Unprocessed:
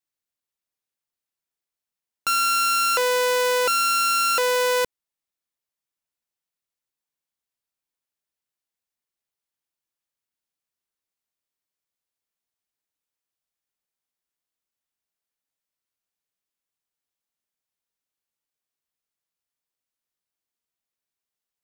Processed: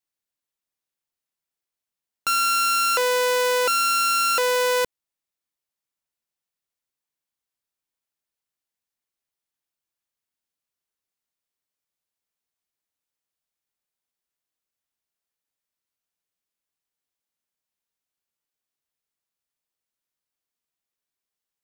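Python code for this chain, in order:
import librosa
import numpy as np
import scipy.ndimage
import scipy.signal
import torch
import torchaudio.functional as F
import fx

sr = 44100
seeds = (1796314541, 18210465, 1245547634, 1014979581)

y = fx.highpass(x, sr, hz=120.0, slope=12, at=(2.39, 3.93))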